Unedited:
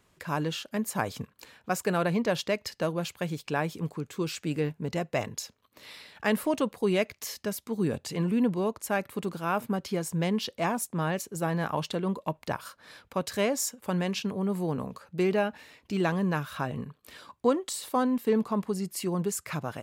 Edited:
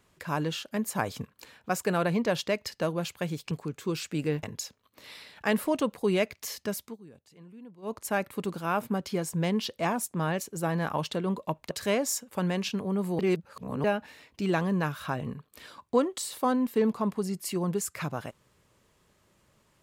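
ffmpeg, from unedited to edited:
ffmpeg -i in.wav -filter_complex "[0:a]asplit=8[link_01][link_02][link_03][link_04][link_05][link_06][link_07][link_08];[link_01]atrim=end=3.512[link_09];[link_02]atrim=start=3.828:end=4.752[link_10];[link_03]atrim=start=5.218:end=7.76,asetpts=PTS-STARTPTS,afade=type=out:start_time=2.412:duration=0.13:silence=0.0749894[link_11];[link_04]atrim=start=7.76:end=8.61,asetpts=PTS-STARTPTS,volume=-22.5dB[link_12];[link_05]atrim=start=8.61:end=12.502,asetpts=PTS-STARTPTS,afade=type=in:duration=0.13:silence=0.0749894[link_13];[link_06]atrim=start=13.218:end=14.702[link_14];[link_07]atrim=start=14.698:end=15.352,asetpts=PTS-STARTPTS,areverse[link_15];[link_08]atrim=start=15.348[link_16];[link_09][link_10]acrossfade=duration=0.004:curve1=hsin:curve2=hsin[link_17];[link_11][link_12][link_13]concat=n=3:v=0:a=1[link_18];[link_17][link_18]acrossfade=duration=0.004:curve1=hsin:curve2=hsin[link_19];[link_19][link_14]acrossfade=duration=0.004:curve1=hsin:curve2=hsin[link_20];[link_20][link_15]acrossfade=duration=0.004:curve1=hsin:curve2=hsin[link_21];[link_21][link_16]acrossfade=duration=0.004:curve1=hsin:curve2=hsin" out.wav

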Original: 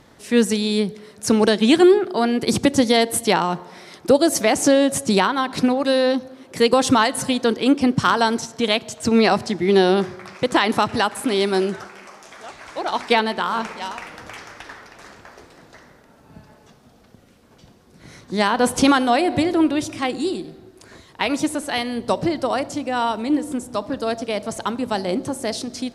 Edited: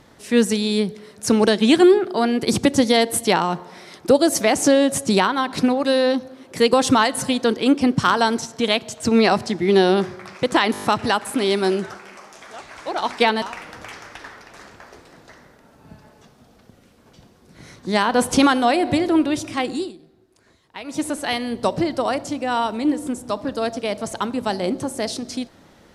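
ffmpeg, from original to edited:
ffmpeg -i in.wav -filter_complex "[0:a]asplit=9[link_01][link_02][link_03][link_04][link_05][link_06][link_07][link_08][link_09];[link_01]atrim=end=10.752[link_10];[link_02]atrim=start=10.728:end=10.752[link_11];[link_03]atrim=start=10.728:end=10.752[link_12];[link_04]atrim=start=10.728:end=10.752[link_13];[link_05]atrim=start=10.728:end=10.752[link_14];[link_06]atrim=start=10.728:end=13.322[link_15];[link_07]atrim=start=13.868:end=20.38,asetpts=PTS-STARTPTS,afade=type=out:start_time=6.322:duration=0.19:silence=0.223872[link_16];[link_08]atrim=start=20.38:end=21.32,asetpts=PTS-STARTPTS,volume=-13dB[link_17];[link_09]atrim=start=21.32,asetpts=PTS-STARTPTS,afade=type=in:duration=0.19:silence=0.223872[link_18];[link_10][link_11]acrossfade=duration=0.004:curve1=hsin:curve2=hsin[link_19];[link_19][link_12]acrossfade=duration=0.004:curve1=hsin:curve2=hsin[link_20];[link_20][link_13]acrossfade=duration=0.004:curve1=hsin:curve2=hsin[link_21];[link_21][link_14]acrossfade=duration=0.004:curve1=hsin:curve2=hsin[link_22];[link_22][link_15]acrossfade=duration=0.004:curve1=hsin:curve2=hsin[link_23];[link_16][link_17][link_18]concat=n=3:v=0:a=1[link_24];[link_23][link_24]acrossfade=duration=0.004:curve1=hsin:curve2=hsin" out.wav

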